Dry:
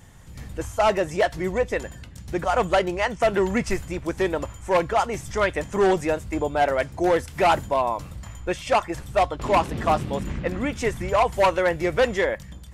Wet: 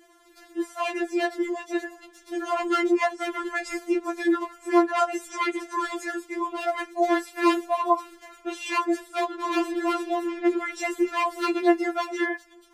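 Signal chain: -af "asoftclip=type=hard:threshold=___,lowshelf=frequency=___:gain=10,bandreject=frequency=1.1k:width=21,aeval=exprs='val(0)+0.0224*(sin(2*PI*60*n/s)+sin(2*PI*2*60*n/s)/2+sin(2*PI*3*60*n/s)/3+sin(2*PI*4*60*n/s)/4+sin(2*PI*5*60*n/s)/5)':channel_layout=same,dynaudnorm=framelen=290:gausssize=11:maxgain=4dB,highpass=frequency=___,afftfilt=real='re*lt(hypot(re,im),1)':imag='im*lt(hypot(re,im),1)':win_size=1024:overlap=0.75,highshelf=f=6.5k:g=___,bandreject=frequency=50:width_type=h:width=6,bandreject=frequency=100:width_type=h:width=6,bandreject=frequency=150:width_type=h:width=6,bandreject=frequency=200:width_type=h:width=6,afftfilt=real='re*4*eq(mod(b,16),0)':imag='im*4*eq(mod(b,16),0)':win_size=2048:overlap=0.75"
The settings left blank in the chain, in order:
-14dB, 330, 140, -4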